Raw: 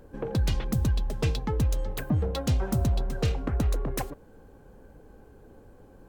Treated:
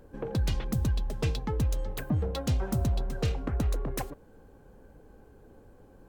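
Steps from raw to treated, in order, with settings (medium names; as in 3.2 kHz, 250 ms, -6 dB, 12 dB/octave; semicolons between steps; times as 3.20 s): trim -2.5 dB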